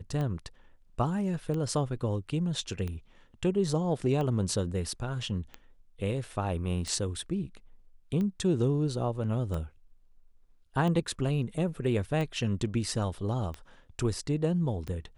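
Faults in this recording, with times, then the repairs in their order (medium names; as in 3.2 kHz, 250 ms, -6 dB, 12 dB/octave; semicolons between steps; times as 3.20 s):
tick 45 rpm -23 dBFS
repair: de-click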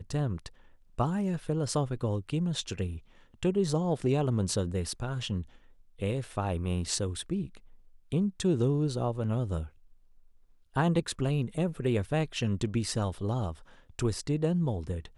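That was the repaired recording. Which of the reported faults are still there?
nothing left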